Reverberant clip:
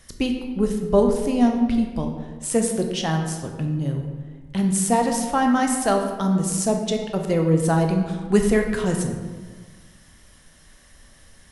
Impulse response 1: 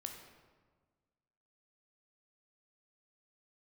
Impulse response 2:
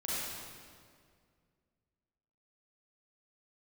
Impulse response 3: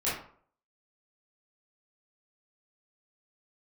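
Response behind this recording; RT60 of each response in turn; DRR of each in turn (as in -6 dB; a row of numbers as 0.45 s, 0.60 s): 1; 1.5 s, 2.1 s, 0.55 s; 3.0 dB, -9.0 dB, -10.5 dB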